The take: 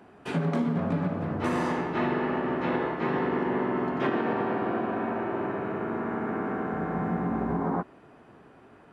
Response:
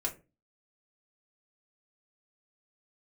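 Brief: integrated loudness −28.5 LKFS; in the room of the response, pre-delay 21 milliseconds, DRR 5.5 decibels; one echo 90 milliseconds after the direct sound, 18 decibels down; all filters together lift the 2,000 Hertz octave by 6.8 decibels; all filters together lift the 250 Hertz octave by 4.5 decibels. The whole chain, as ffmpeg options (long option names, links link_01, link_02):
-filter_complex "[0:a]equalizer=frequency=250:width_type=o:gain=5.5,equalizer=frequency=2000:width_type=o:gain=8.5,aecho=1:1:90:0.126,asplit=2[link_01][link_02];[1:a]atrim=start_sample=2205,adelay=21[link_03];[link_02][link_03]afir=irnorm=-1:irlink=0,volume=-8.5dB[link_04];[link_01][link_04]amix=inputs=2:normalize=0,volume=-4.5dB"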